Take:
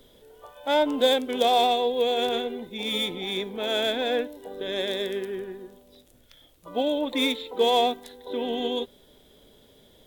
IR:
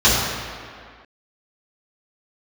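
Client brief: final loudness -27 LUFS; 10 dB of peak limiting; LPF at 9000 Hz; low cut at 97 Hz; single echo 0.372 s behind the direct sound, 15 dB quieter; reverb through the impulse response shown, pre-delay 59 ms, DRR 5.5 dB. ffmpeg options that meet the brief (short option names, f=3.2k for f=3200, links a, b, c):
-filter_complex "[0:a]highpass=97,lowpass=9k,alimiter=limit=-19.5dB:level=0:latency=1,aecho=1:1:372:0.178,asplit=2[a][b];[1:a]atrim=start_sample=2205,adelay=59[c];[b][c]afir=irnorm=-1:irlink=0,volume=-30dB[d];[a][d]amix=inputs=2:normalize=0,volume=1.5dB"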